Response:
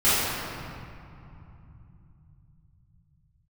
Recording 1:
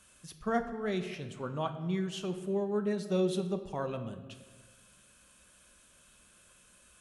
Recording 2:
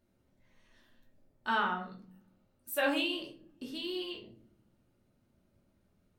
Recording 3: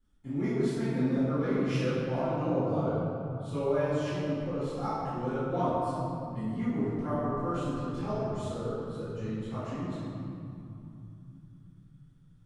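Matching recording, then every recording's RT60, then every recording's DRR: 3; 1.4, 0.50, 2.7 seconds; 7.0, −1.5, −14.0 decibels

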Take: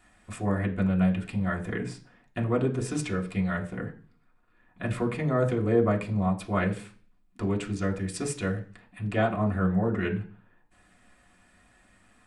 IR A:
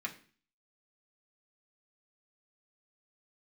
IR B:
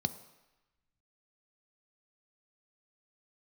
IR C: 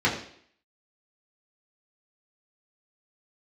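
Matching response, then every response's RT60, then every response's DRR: A; 0.40, 1.0, 0.60 seconds; −2.0, 11.0, −6.0 decibels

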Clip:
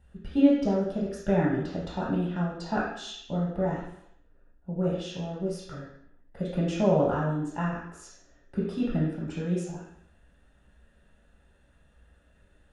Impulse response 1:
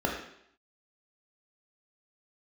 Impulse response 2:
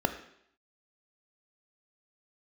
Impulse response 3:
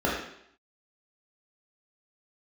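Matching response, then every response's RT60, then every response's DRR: 3; 0.70, 0.70, 0.70 seconds; −0.5, 8.0, −5.5 decibels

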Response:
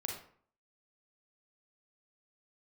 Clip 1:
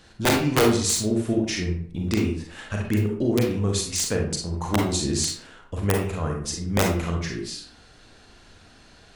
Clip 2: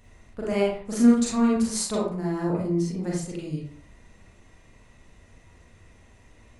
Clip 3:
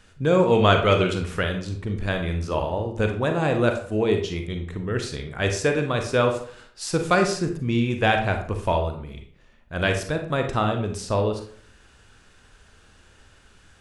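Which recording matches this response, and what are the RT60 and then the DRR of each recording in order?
1; 0.55, 0.55, 0.55 seconds; 0.0, −5.0, 4.5 decibels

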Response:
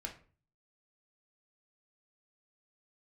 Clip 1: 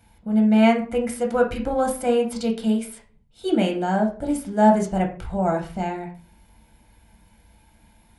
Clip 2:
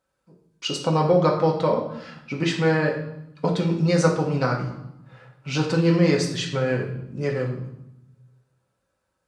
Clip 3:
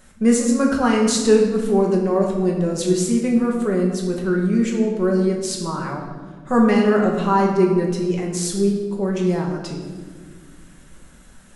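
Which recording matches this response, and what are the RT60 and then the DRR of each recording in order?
1; 0.40, 0.80, 1.6 seconds; 1.0, −0.5, −1.0 decibels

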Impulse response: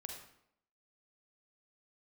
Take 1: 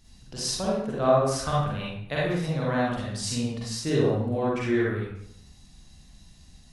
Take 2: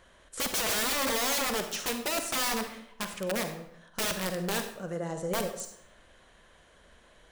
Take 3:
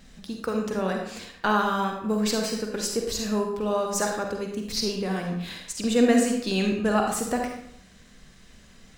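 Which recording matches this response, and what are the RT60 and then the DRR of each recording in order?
3; 0.75, 0.70, 0.75 seconds; −7.0, 6.5, 1.5 decibels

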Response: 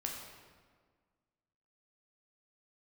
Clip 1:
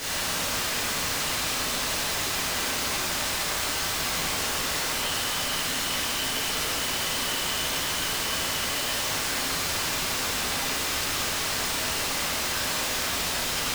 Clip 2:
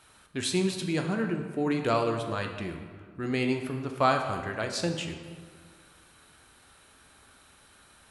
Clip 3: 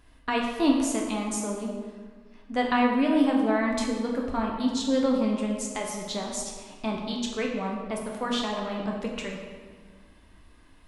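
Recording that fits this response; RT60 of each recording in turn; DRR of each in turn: 3; 1.6, 1.6, 1.6 seconds; −9.5, 4.0, −0.5 decibels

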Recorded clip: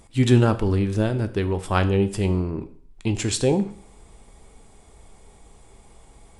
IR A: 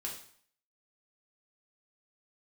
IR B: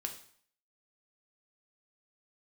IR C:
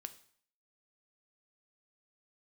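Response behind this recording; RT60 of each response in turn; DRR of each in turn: C; 0.55, 0.55, 0.55 seconds; −2.5, 3.5, 9.5 decibels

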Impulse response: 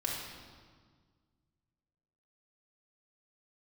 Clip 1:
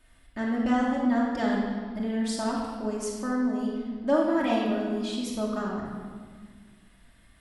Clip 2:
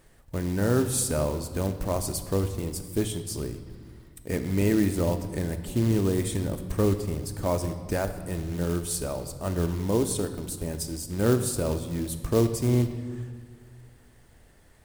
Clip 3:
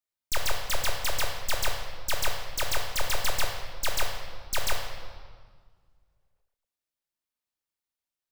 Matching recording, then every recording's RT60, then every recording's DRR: 1; 1.7, 1.7, 1.7 seconds; −4.0, 8.0, 1.0 decibels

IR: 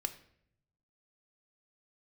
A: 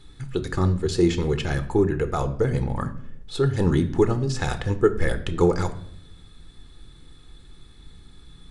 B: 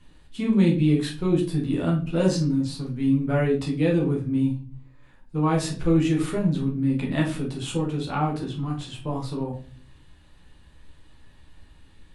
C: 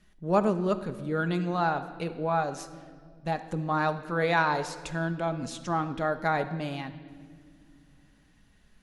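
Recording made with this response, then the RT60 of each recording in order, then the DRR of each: A; 0.70 s, 0.40 s, non-exponential decay; 8.5, −2.5, 7.5 decibels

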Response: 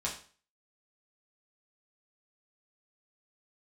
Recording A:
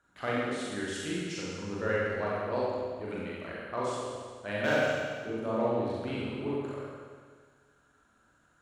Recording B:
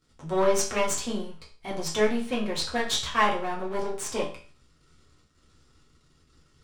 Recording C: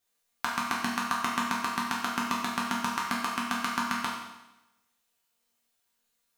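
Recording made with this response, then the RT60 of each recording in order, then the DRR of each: B; 1.7, 0.40, 0.95 seconds; −7.5, −4.5, −5.0 decibels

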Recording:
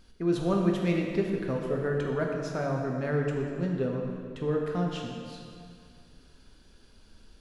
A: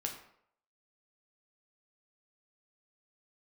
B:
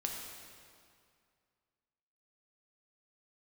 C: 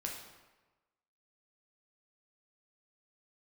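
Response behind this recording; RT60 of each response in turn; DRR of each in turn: B; 0.70, 2.2, 1.2 seconds; 1.0, 0.0, −1.0 decibels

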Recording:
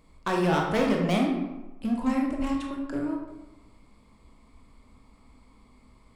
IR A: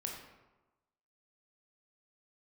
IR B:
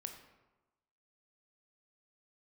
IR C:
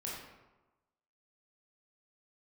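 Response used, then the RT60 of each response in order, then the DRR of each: A; 1.1, 1.1, 1.1 seconds; 0.0, 5.0, −5.5 decibels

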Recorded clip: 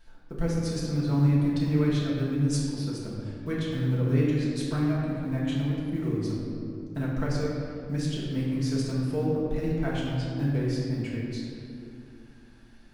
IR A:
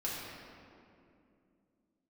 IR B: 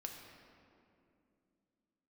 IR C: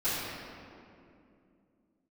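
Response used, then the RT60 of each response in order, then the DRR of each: A; 2.6, 2.6, 2.5 seconds; −7.0, 1.5, −17.0 decibels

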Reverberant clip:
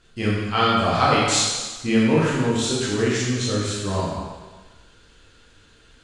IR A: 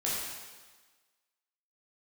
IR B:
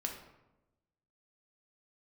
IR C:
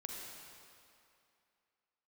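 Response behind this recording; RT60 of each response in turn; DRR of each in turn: A; 1.4, 1.0, 2.6 seconds; −7.5, 1.0, −1.0 decibels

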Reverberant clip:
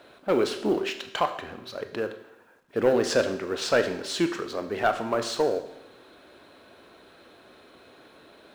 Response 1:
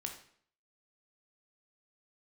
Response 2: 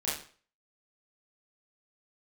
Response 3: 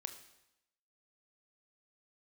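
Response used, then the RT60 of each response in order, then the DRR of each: 3; 0.60, 0.45, 0.90 seconds; 3.0, −8.5, 7.5 decibels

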